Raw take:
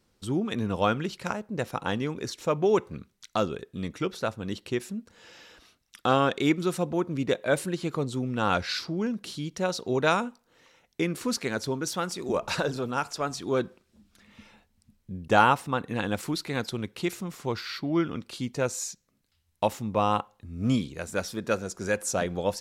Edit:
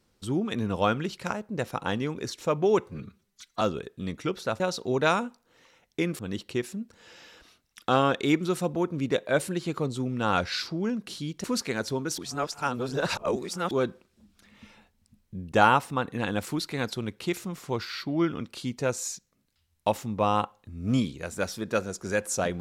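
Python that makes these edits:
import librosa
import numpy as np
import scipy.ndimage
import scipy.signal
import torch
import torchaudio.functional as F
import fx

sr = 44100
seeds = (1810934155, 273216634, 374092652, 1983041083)

y = fx.edit(x, sr, fx.stretch_span(start_s=2.89, length_s=0.48, factor=1.5),
    fx.move(start_s=9.61, length_s=1.59, to_s=4.36),
    fx.reverse_span(start_s=11.94, length_s=1.53), tone=tone)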